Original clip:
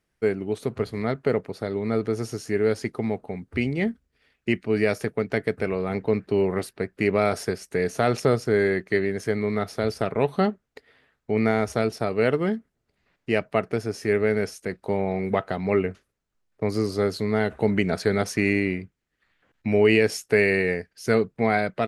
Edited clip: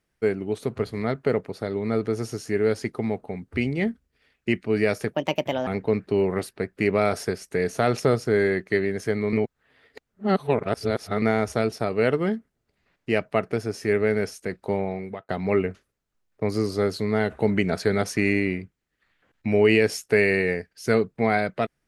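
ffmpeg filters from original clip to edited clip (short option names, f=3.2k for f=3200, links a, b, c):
-filter_complex "[0:a]asplit=6[a][b][c][d][e][f];[a]atrim=end=5.144[g];[b]atrim=start=5.14:end=5.87,asetpts=PTS-STARTPTS,asetrate=60858,aresample=44100,atrim=end_sample=23328,asetpts=PTS-STARTPTS[h];[c]atrim=start=5.866:end=9.532[i];[d]atrim=start=9.528:end=11.422,asetpts=PTS-STARTPTS,areverse[j];[e]atrim=start=11.418:end=15.49,asetpts=PTS-STARTPTS,afade=t=out:st=3.522:d=0.55[k];[f]atrim=start=15.49,asetpts=PTS-STARTPTS,afade=t=in:d=0.004:c=hsin[l];[g][h]acrossfade=d=0.004:c1=hsin:c2=hsin[m];[m][i]acrossfade=d=0.004:c1=hsin:c2=hsin[n];[n][j]acrossfade=d=0.004:c1=hsin:c2=hsin[o];[k][l]concat=n=2:v=0:a=1[p];[o][p]acrossfade=d=0.004:c1=hsin:c2=hsin"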